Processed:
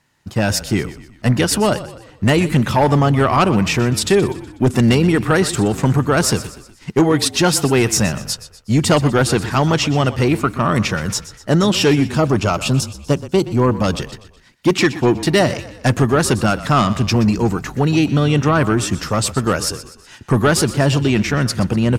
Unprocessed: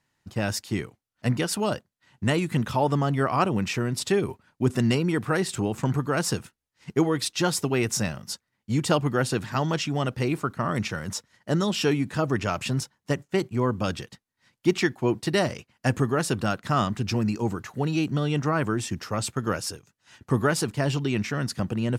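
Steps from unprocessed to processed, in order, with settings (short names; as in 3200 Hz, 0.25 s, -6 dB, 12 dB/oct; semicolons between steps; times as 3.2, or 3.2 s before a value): 12.12–14 bell 1900 Hz -14 dB 0.32 oct; sine folder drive 6 dB, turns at -8 dBFS; frequency-shifting echo 0.123 s, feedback 47%, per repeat -31 Hz, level -15 dB; gain +1 dB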